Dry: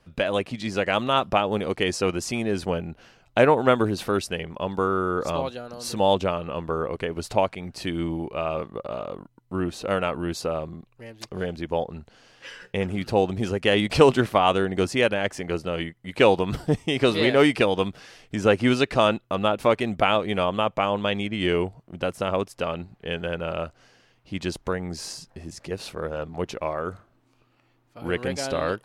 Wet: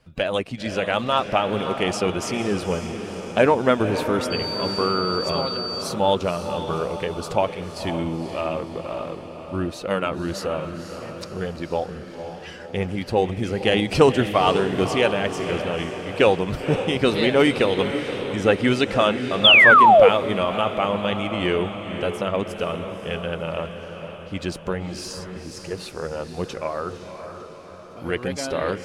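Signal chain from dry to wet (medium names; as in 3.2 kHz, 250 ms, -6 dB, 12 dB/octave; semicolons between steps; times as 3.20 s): coarse spectral quantiser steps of 15 dB; echo that smears into a reverb 522 ms, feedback 56%, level -8.5 dB; 4.30–5.81 s: whistle 4.6 kHz -29 dBFS; 19.44–20.09 s: painted sound fall 440–3600 Hz -12 dBFS; trim +1 dB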